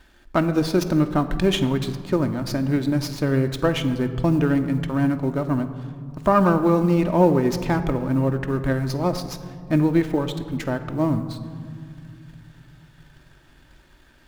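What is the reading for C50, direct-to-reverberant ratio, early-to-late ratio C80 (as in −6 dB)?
11.0 dB, 6.5 dB, 12.5 dB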